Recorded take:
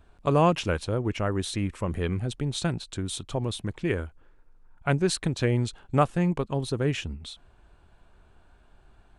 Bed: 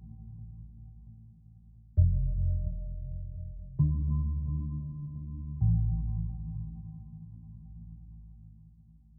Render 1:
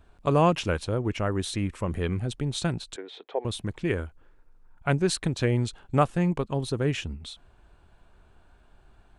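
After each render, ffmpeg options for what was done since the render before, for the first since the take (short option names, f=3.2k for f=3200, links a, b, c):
-filter_complex "[0:a]asettb=1/sr,asplit=3[a][b][c];[a]atrim=end=2.964[d];[b]atrim=start=2.96:end=3.45,asetpts=PTS-STARTPTS,afade=t=in:d=0.004:c=qsin,afade=t=out:st=0.486:d=0.004:c=qsin,highpass=f=400:w=0.5412,highpass=f=400:w=1.3066,equalizer=f=450:t=q:w=4:g=9,equalizer=f=790:t=q:w=4:g=4,equalizer=f=1.2k:t=q:w=4:g=-8,equalizer=f=1.9k:t=q:w=4:g=4,equalizer=f=2.9k:t=q:w=4:g=-7,lowpass=f=3.2k:w=0.5412,lowpass=f=3.2k:w=1.3066[e];[c]atrim=start=3.446[f];[d][e]acrossfade=d=0.004:c1=hsin:c2=qsin[g];[g][f]acrossfade=d=0.004:c1=qsin:c2=hsin"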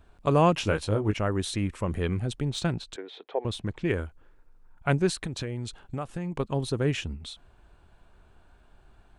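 -filter_complex "[0:a]asettb=1/sr,asplit=3[a][b][c];[a]atrim=end=0.584[d];[b]atrim=start=0.58:end=1.14,asetpts=PTS-STARTPTS,afade=t=in:d=0.004:c=qsin,afade=t=out:st=0.556:d=0.004:c=qsin,asplit=2[e][f];[f]adelay=19,volume=-5dB[g];[e][g]amix=inputs=2:normalize=0,atrim=end_sample=24696[h];[c]atrim=start=1.136[i];[d][h]acrossfade=d=0.004:c1=hsin:c2=qsin[j];[j][i]acrossfade=d=0.004:c1=qsin:c2=hsin,asettb=1/sr,asplit=3[k][l][m];[k]atrim=end=2.504[n];[l]atrim=start=2.5:end=3.94,asetpts=PTS-STARTPTS,afade=t=in:d=0.004:c=qsin,afade=t=out:st=1.436:d=0.004:c=qsin,adynamicsmooth=sensitivity=2.5:basefreq=7.6k[o];[m]atrim=start=3.936[p];[n][o]acrossfade=d=0.004:c1=hsin:c2=qsin[q];[q][p]acrossfade=d=0.004:c1=qsin:c2=hsin,asettb=1/sr,asplit=3[r][s][t];[r]atrim=end=5.094[u];[s]atrim=start=5.09:end=6.4,asetpts=PTS-STARTPTS,afade=t=in:d=0.004:c=qsin,afade=t=out:st=1.306:d=0.004:c=qsin,acompressor=threshold=-29dB:ratio=5:attack=3.2:release=140:knee=1:detection=peak[v];[t]atrim=start=6.396[w];[u][v]acrossfade=d=0.004:c1=hsin:c2=qsin[x];[x][w]acrossfade=d=0.004:c1=qsin:c2=hsin"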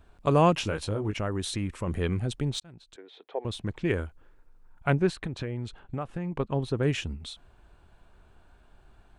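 -filter_complex "[0:a]asettb=1/sr,asplit=3[a][b][c];[a]atrim=end=0.644[d];[b]atrim=start=0.64:end=1.87,asetpts=PTS-STARTPTS,afade=t=in:d=0.004:c=qsin,afade=t=out:st=1.226:d=0.004:c=qsin,acompressor=threshold=-26dB:ratio=2.5:attack=3.2:release=140:knee=1:detection=peak[e];[c]atrim=start=1.866[f];[d][e]acrossfade=d=0.004:c1=hsin:c2=qsin[g];[g][f]acrossfade=d=0.004:c1=qsin:c2=hsin,asettb=1/sr,asplit=3[h][i][j];[h]atrim=end=4.904[k];[i]atrim=start=4.9:end=6.83,asetpts=PTS-STARTPTS,afade=t=in:d=0.004:c=qsin,afade=t=out:st=1.926:d=0.004:c=qsin,bass=f=250:g=0,treble=f=4k:g=-12[l];[j]atrim=start=6.826[m];[k][l]acrossfade=d=0.004:c1=hsin:c2=qsin[n];[n][m]acrossfade=d=0.004:c1=qsin:c2=hsin,asplit=2[o][p];[o]atrim=end=2.6,asetpts=PTS-STARTPTS,afade=t=out:st=2.596:d=0.004:c=hsin[q];[p]atrim=start=2.6,asetpts=PTS-STARTPTS,afade=t=in:d=1.15[r];[q][r]concat=n=2:v=0:a=1"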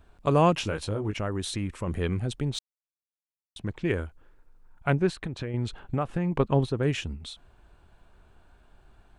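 -filter_complex "[0:a]asplit=5[a][b][c][d][e];[a]atrim=end=2.59,asetpts=PTS-STARTPTS,afade=t=out:st=2.586:d=0.004:c=hsin[f];[b]atrim=start=2.59:end=3.56,asetpts=PTS-STARTPTS,volume=0[g];[c]atrim=start=3.56:end=5.542,asetpts=PTS-STARTPTS,afade=t=in:d=0.004:c=hsin[h];[d]atrim=start=5.538:end=6.662,asetpts=PTS-STARTPTS,volume=5.5dB[i];[e]atrim=start=6.658[j];[f][g][h]concat=n=3:v=0:a=1[k];[k][i]acrossfade=d=0.004:c1=hsin:c2=hsin[l];[l][j]acrossfade=d=0.004:c1=hsin:c2=hsin"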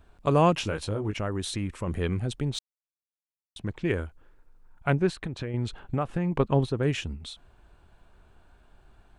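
-af anull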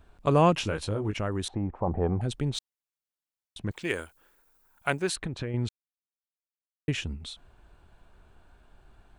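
-filter_complex "[0:a]asettb=1/sr,asplit=3[a][b][c];[a]atrim=end=1.484[d];[b]atrim=start=1.48:end=2.21,asetpts=PTS-STARTPTS,afade=t=in:d=0.004:c=qsin,afade=t=out:st=0.726:d=0.004:c=qsin,lowpass=f=790:t=q:w=8[e];[c]atrim=start=2.206[f];[d][e]acrossfade=d=0.004:c1=hsin:c2=qsin[g];[g][f]acrossfade=d=0.004:c1=qsin:c2=hsin,asettb=1/sr,asplit=3[h][i][j];[h]atrim=end=3.714[k];[i]atrim=start=3.71:end=5.16,asetpts=PTS-STARTPTS,afade=t=in:d=0.004:c=qsin,afade=t=out:st=1.446:d=0.004:c=qsin,aemphasis=mode=production:type=riaa[l];[j]atrim=start=5.156[m];[k][l]acrossfade=d=0.004:c1=hsin:c2=qsin[n];[n][m]acrossfade=d=0.004:c1=qsin:c2=hsin,asplit=3[o][p][q];[o]atrim=end=5.69,asetpts=PTS-STARTPTS,afade=t=out:st=5.686:d=0.004:c=hsin[r];[p]atrim=start=5.69:end=6.88,asetpts=PTS-STARTPTS,volume=0[s];[q]atrim=start=6.88,asetpts=PTS-STARTPTS,afade=t=in:d=0.004:c=hsin[t];[r][s][t]concat=n=3:v=0:a=1"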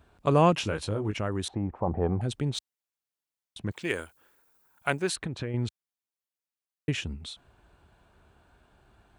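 -af "highpass=60"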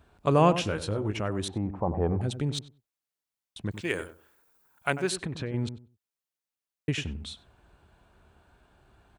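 -filter_complex "[0:a]asplit=2[a][b];[b]adelay=95,lowpass=f=940:p=1,volume=-10dB,asplit=2[c][d];[d]adelay=95,lowpass=f=940:p=1,volume=0.22,asplit=2[e][f];[f]adelay=95,lowpass=f=940:p=1,volume=0.22[g];[a][c][e][g]amix=inputs=4:normalize=0"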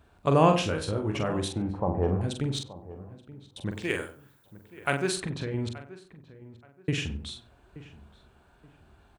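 -filter_complex "[0:a]asplit=2[a][b];[b]adelay=44,volume=-6dB[c];[a][c]amix=inputs=2:normalize=0,asplit=2[d][e];[e]adelay=877,lowpass=f=1.7k:p=1,volume=-17dB,asplit=2[f][g];[g]adelay=877,lowpass=f=1.7k:p=1,volume=0.3,asplit=2[h][i];[i]adelay=877,lowpass=f=1.7k:p=1,volume=0.3[j];[d][f][h][j]amix=inputs=4:normalize=0"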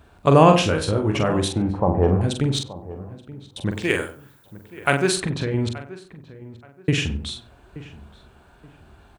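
-af "volume=8dB,alimiter=limit=-1dB:level=0:latency=1"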